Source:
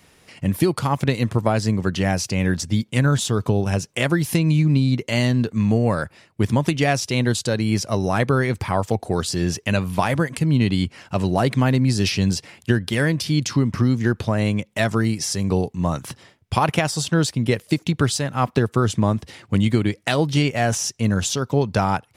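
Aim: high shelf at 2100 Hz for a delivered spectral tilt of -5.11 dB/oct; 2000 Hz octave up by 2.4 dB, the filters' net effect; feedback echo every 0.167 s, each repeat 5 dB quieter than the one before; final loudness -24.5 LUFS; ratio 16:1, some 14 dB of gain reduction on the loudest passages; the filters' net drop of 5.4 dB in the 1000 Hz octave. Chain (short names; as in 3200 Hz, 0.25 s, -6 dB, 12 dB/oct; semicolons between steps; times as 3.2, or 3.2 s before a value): bell 1000 Hz -9 dB; bell 2000 Hz +8 dB; high shelf 2100 Hz -4 dB; compressor 16:1, threshold -28 dBFS; feedback echo 0.167 s, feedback 56%, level -5 dB; gain +7.5 dB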